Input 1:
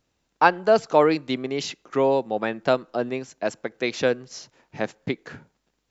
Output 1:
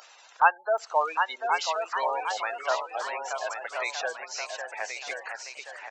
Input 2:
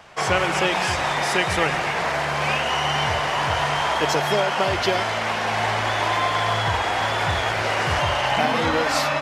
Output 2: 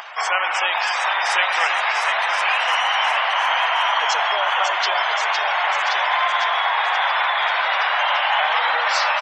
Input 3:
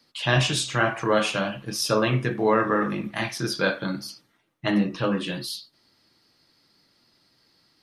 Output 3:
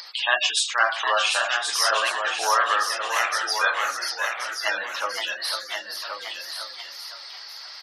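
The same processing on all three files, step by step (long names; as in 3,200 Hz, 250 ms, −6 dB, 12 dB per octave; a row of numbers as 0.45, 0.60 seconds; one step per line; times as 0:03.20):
gate on every frequency bin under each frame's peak −20 dB strong
high-pass filter 760 Hz 24 dB per octave
upward compression, threshold −30 dBFS
delay with pitch and tempo change per echo 780 ms, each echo +1 semitone, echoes 3, each echo −6 dB
single-tap delay 1,077 ms −6.5 dB
normalise the peak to −6 dBFS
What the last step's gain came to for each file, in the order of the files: −1.5, +3.0, +4.5 decibels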